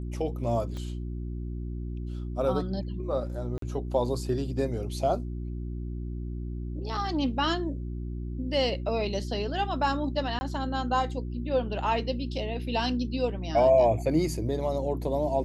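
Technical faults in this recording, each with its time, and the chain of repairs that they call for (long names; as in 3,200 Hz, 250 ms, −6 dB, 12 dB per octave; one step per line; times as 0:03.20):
mains hum 60 Hz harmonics 6 −34 dBFS
0:00.77: click −27 dBFS
0:03.58–0:03.62: drop-out 43 ms
0:10.39–0:10.41: drop-out 20 ms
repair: click removal
hum removal 60 Hz, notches 6
repair the gap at 0:03.58, 43 ms
repair the gap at 0:10.39, 20 ms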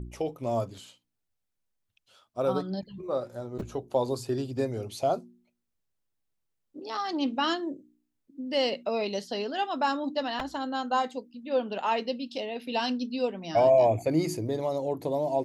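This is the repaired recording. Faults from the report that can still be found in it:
0:00.77: click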